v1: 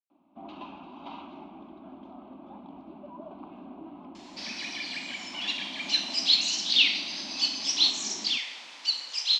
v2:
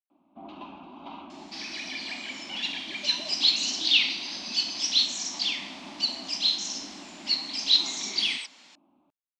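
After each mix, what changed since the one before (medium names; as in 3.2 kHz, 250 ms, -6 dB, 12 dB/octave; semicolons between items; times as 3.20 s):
second sound: entry -2.85 s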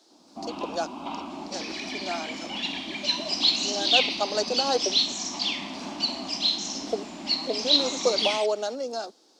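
speech: unmuted; first sound +7.5 dB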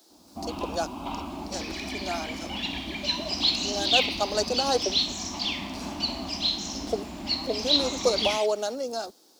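second sound: add distance through air 80 m; master: remove three-band isolator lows -21 dB, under 160 Hz, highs -22 dB, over 7.8 kHz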